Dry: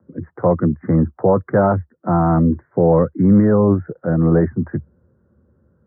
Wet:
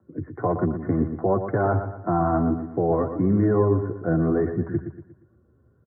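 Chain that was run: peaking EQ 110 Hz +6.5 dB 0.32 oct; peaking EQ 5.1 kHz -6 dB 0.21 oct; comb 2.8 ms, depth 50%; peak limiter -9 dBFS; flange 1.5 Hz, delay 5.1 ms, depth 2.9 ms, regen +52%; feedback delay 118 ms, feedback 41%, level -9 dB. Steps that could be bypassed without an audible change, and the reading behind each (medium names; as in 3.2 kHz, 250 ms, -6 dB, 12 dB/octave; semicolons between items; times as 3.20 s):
peaking EQ 5.1 kHz: input has nothing above 1.4 kHz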